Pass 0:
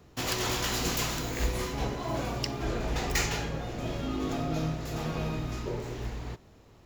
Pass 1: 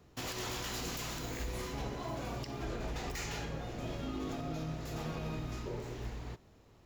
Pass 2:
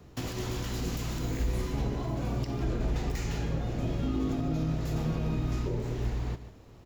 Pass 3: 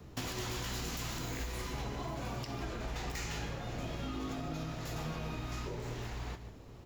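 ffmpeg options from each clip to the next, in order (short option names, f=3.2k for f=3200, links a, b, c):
-af "alimiter=limit=-24dB:level=0:latency=1:release=73,volume=-5.5dB"
-filter_complex "[0:a]lowshelf=f=400:g=5,acrossover=split=390[a][b];[b]acompressor=threshold=-47dB:ratio=3[c];[a][c]amix=inputs=2:normalize=0,aecho=1:1:149:0.224,volume=5.5dB"
-filter_complex "[0:a]acrossover=split=690|2700[a][b][c];[a]acompressor=threshold=-39dB:ratio=6[d];[d][b][c]amix=inputs=3:normalize=0,flanger=delay=8.5:depth=8.2:regen=-65:speed=0.83:shape=triangular,volume=5dB"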